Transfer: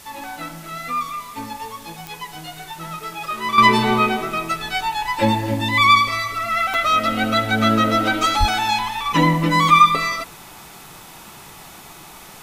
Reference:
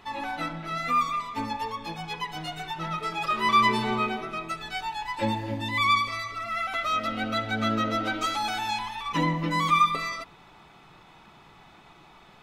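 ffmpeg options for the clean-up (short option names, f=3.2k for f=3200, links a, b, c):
-filter_complex "[0:a]adeclick=t=4,asplit=3[a][b][c];[a]afade=t=out:st=8.39:d=0.02[d];[b]highpass=f=140:w=0.5412,highpass=f=140:w=1.3066,afade=t=in:st=8.39:d=0.02,afade=t=out:st=8.51:d=0.02[e];[c]afade=t=in:st=8.51:d=0.02[f];[d][e][f]amix=inputs=3:normalize=0,afwtdn=0.0071,asetnsamples=n=441:p=0,asendcmd='3.58 volume volume -9.5dB',volume=0dB"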